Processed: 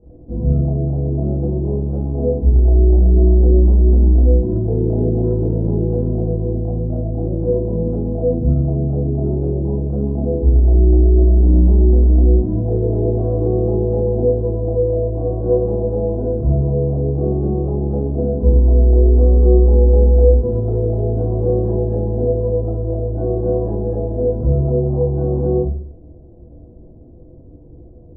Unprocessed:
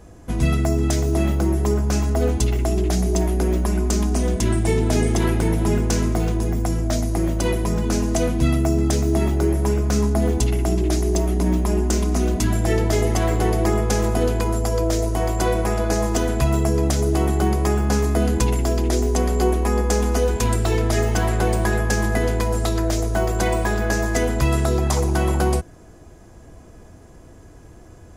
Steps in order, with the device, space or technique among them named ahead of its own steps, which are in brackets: next room (low-pass 550 Hz 24 dB/octave; reverberation RT60 0.55 s, pre-delay 20 ms, DRR -8.5 dB); 20.89–21.49 s: low-pass 1.3 kHz 12 dB/octave; trim -6.5 dB

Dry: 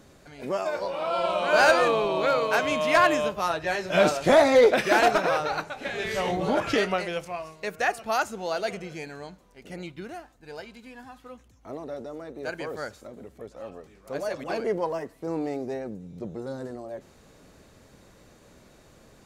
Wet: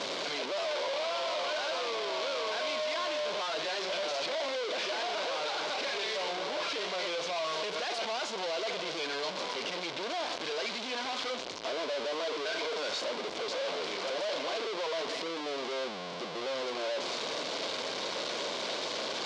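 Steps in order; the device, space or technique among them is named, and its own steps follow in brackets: 12.23–12.83 s: rippled EQ curve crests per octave 1.7, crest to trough 16 dB; home computer beeper (one-bit comparator; cabinet simulation 640–4800 Hz, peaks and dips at 810 Hz -7 dB, 1.3 kHz -8 dB, 1.8 kHz -10 dB, 2.6 kHz -5 dB)

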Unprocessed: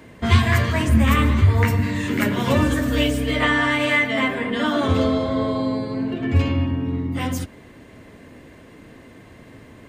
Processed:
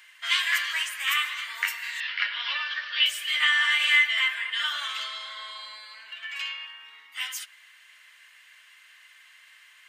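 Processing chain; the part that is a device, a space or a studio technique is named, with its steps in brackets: 2.00–3.06 s: steep low-pass 5.2 kHz 72 dB/octave; headphones lying on a table (high-pass 1.5 kHz 24 dB/octave; peaking EQ 3 kHz +6.5 dB 0.22 oct)

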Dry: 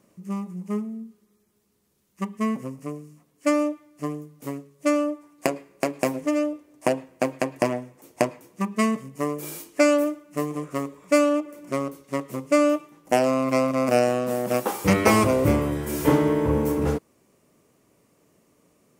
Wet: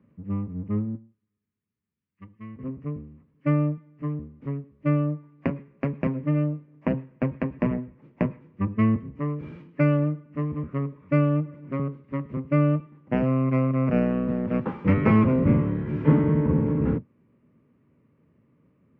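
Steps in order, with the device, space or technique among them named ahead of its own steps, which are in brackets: 0.95–2.59 s: amplifier tone stack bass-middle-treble 5-5-5; sub-octave bass pedal (octave divider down 1 oct, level +4 dB; cabinet simulation 70–2400 Hz, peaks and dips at 160 Hz +6 dB, 240 Hz +9 dB, 720 Hz -9 dB); trim -5.5 dB

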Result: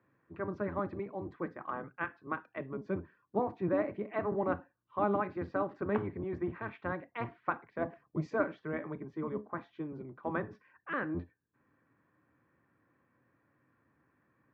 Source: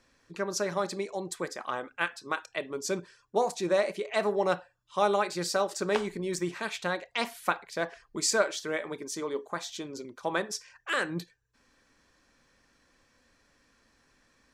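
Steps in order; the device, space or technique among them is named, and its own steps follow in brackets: sub-octave bass pedal (octave divider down 1 oct, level +4 dB; cabinet simulation 90–2000 Hz, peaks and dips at 98 Hz -3 dB, 310 Hz +7 dB, 1.1 kHz +4 dB); 7.81–8.38 s: fifteen-band graphic EQ 160 Hz +6 dB, 630 Hz +6 dB, 1.6 kHz -6 dB, 6.3 kHz +11 dB; trim -7 dB

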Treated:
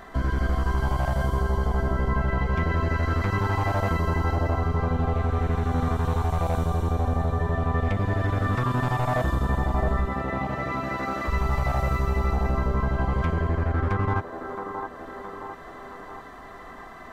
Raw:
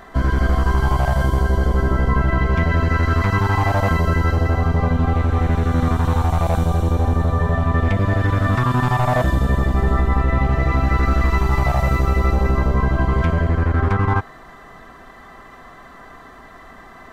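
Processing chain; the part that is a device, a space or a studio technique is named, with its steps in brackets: 10.06–11.27 s: high-pass 110 Hz -> 250 Hz 12 dB/octave; feedback echo behind a band-pass 667 ms, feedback 47%, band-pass 640 Hz, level -4 dB; parallel compression (in parallel at 0 dB: compression, threshold -31 dBFS, peak gain reduction 17.5 dB); on the sum: trim -8.5 dB

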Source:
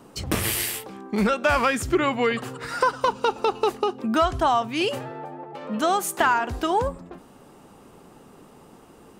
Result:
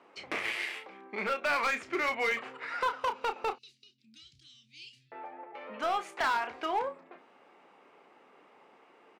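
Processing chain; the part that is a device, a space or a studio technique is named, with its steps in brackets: 3.55–5.12 s: Chebyshev band-stop 140–4300 Hz, order 3; megaphone (band-pass 490–3100 Hz; peaking EQ 2.2 kHz +9.5 dB 0.44 oct; hard clipper -18 dBFS, distortion -12 dB; doubling 31 ms -9 dB); trim -7 dB

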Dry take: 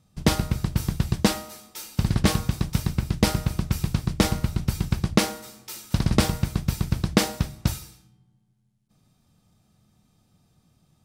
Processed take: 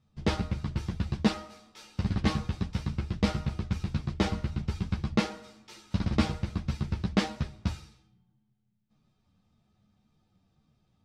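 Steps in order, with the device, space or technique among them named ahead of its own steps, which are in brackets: string-machine ensemble chorus (three-phase chorus; low-pass 4.3 kHz 12 dB/octave); trim -3 dB

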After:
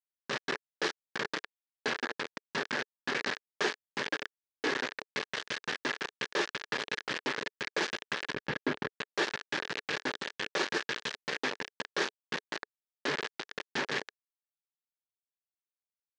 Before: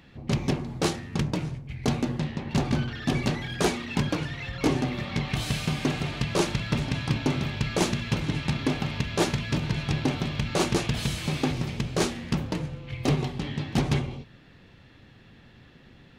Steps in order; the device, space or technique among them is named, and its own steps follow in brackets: hand-held game console (bit crusher 4-bit; cabinet simulation 430–5500 Hz, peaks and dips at 430 Hz +4 dB, 700 Hz -6 dB, 1.7 kHz +10 dB); 8.34–8.96 s: RIAA curve playback; trim -6 dB

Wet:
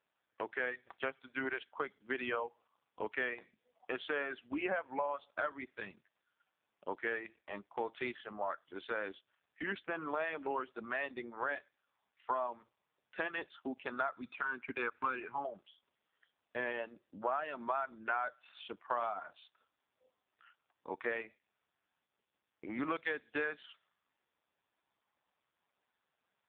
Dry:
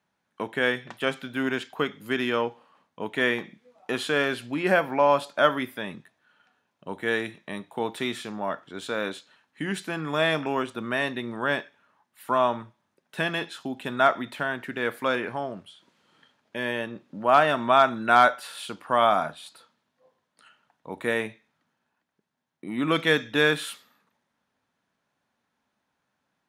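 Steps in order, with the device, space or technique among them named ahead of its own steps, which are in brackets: 1.14–1.71 s: high-pass 250 Hz 6 dB/octave; 14.13–15.45 s: comb 0.8 ms, depth 97%; reverb removal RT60 1.7 s; voicemail (band-pass 360–3000 Hz; compression 8:1, threshold -30 dBFS, peak gain reduction 16.5 dB; trim -1.5 dB; AMR-NB 5.15 kbps 8 kHz)

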